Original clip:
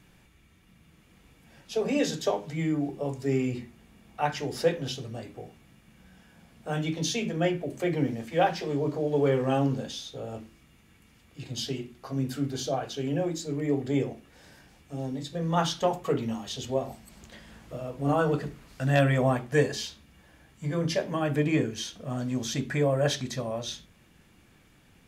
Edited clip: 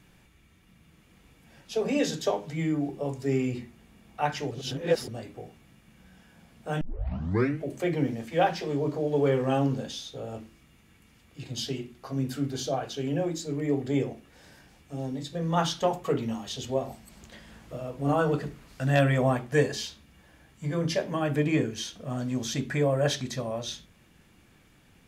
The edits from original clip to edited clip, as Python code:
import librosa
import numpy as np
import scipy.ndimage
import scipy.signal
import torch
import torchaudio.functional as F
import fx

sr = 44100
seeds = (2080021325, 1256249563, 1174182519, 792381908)

y = fx.edit(x, sr, fx.reverse_span(start_s=4.51, length_s=0.57),
    fx.tape_start(start_s=6.81, length_s=0.87), tone=tone)